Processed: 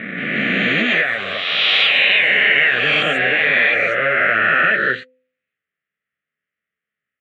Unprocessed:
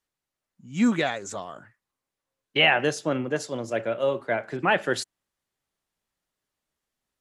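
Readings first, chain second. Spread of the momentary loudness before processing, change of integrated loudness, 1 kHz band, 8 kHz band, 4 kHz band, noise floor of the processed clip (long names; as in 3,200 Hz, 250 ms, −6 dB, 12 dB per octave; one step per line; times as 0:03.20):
17 LU, +11.0 dB, +6.5 dB, can't be measured, +13.0 dB, below −85 dBFS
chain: peak hold with a rise ahead of every peak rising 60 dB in 2.62 s
flanger 0.91 Hz, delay 9.3 ms, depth 6.9 ms, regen −22%
leveller curve on the samples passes 2
loudspeaker in its box 180–2,900 Hz, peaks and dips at 440 Hz +4 dB, 890 Hz −9 dB, 1,300 Hz +5 dB, 1,900 Hz +7 dB
delay with pitch and tempo change per echo 178 ms, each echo +5 semitones, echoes 2
phaser with its sweep stopped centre 2,200 Hz, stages 4
downward compressor, threshold −19 dBFS, peak gain reduction 11.5 dB
parametric band 330 Hz −11 dB 1.1 octaves
hum removal 255.6 Hz, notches 2
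level +8 dB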